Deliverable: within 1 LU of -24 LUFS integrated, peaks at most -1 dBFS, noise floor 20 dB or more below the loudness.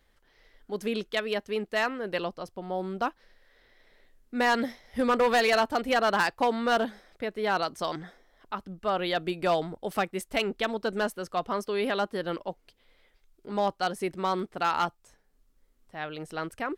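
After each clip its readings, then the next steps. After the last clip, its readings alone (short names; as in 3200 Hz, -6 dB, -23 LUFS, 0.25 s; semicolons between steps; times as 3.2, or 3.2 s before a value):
clipped 0.7%; flat tops at -18.0 dBFS; loudness -29.0 LUFS; peak -18.0 dBFS; loudness target -24.0 LUFS
-> clip repair -18 dBFS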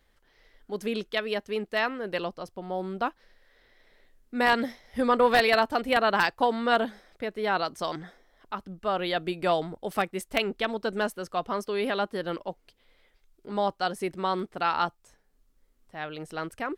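clipped 0.0%; loudness -28.0 LUFS; peak -9.0 dBFS; loudness target -24.0 LUFS
-> gain +4 dB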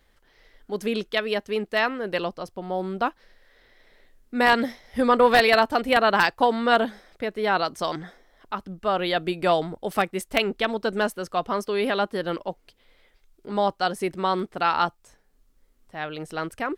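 loudness -24.0 LUFS; peak -5.0 dBFS; noise floor -63 dBFS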